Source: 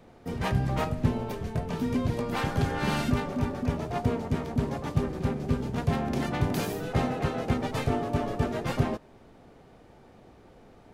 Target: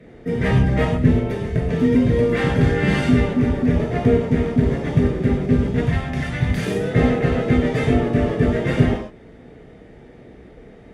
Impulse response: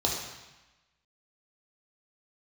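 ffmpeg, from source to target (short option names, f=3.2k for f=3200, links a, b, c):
-filter_complex "[0:a]asettb=1/sr,asplit=3[a][b][c];[a]atrim=end=5.874[d];[b]atrim=start=5.87:end=6.66,asetpts=PTS-STARTPTS,afade=t=in:d=0.004:c=qsin,afade=t=out:st=0.786:d=0.004:c=qsin,equalizer=f=370:w=0.91:g=-13[e];[c]atrim=start=6.656[f];[d][e]acrossfade=d=0.004:c1=hsin:c2=qsin[g];[g][f]acrossfade=d=0.004:c1=qsin:c2=hsin[h];[1:a]atrim=start_sample=2205,atrim=end_sample=3087,asetrate=22491,aresample=44100[i];[h][i]afir=irnorm=-1:irlink=0,volume=-6.5dB"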